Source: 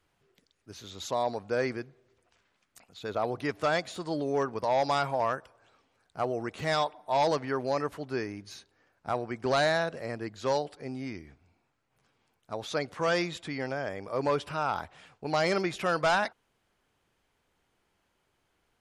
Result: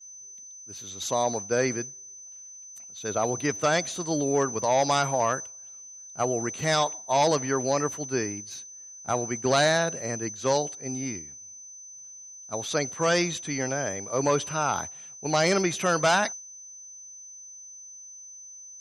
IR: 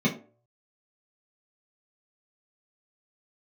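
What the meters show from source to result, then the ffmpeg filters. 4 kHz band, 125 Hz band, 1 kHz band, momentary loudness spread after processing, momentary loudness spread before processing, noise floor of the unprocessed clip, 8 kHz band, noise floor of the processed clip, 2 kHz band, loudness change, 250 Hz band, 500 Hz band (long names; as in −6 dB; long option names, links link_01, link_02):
+6.0 dB, +5.5 dB, +3.0 dB, 19 LU, 15 LU, −76 dBFS, +20.0 dB, −45 dBFS, +3.5 dB, +4.5 dB, +5.0 dB, +3.5 dB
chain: -af "aeval=exprs='val(0)+0.00891*sin(2*PI*6100*n/s)':channel_layout=same,highshelf=frequency=3300:gain=7,agate=range=-33dB:threshold=-32dB:ratio=3:detection=peak,highpass=89,lowshelf=frequency=310:gain=5.5,volume=2dB"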